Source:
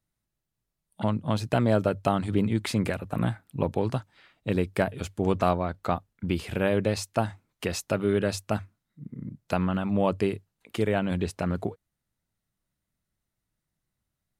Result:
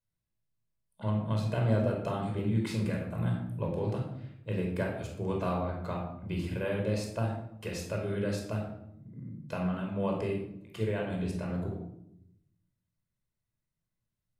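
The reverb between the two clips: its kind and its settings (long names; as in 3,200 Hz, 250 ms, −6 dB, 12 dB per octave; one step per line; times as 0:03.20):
rectangular room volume 1,900 cubic metres, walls furnished, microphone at 5.1 metres
level −12.5 dB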